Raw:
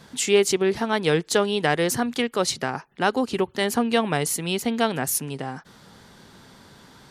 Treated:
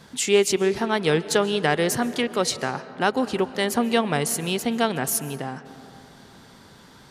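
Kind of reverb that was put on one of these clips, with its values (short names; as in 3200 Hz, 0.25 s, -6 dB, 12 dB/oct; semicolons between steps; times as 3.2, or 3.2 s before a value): digital reverb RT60 2.9 s, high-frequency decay 0.4×, pre-delay 0.1 s, DRR 14.5 dB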